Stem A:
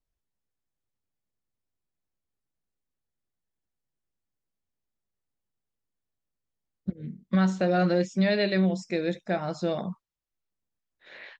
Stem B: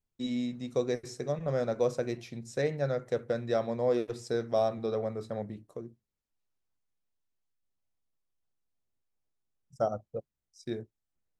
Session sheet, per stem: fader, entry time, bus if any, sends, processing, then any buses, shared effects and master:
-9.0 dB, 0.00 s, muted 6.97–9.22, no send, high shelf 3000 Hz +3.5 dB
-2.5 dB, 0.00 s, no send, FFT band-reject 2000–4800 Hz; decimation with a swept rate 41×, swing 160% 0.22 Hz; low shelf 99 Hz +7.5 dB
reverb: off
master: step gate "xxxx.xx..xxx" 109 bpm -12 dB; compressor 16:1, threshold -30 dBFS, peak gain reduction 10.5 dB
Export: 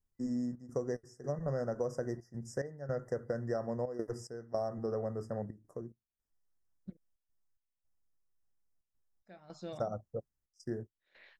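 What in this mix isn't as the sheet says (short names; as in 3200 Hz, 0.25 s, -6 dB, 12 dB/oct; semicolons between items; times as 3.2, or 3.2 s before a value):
stem A -9.0 dB -> -15.5 dB; stem B: missing decimation with a swept rate 41×, swing 160% 0.22 Hz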